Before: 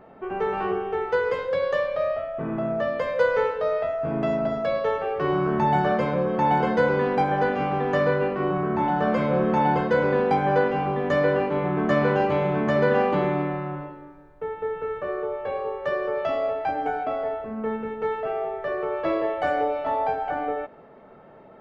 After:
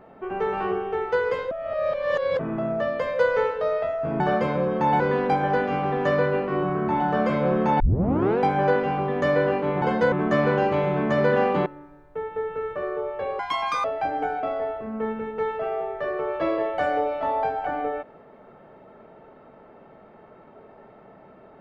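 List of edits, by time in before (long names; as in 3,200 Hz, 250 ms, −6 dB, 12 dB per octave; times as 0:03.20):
0:01.51–0:02.39: reverse
0:04.20–0:05.78: remove
0:06.58–0:06.88: move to 0:11.70
0:09.68: tape start 0.59 s
0:13.24–0:13.92: remove
0:15.65–0:16.48: play speed 183%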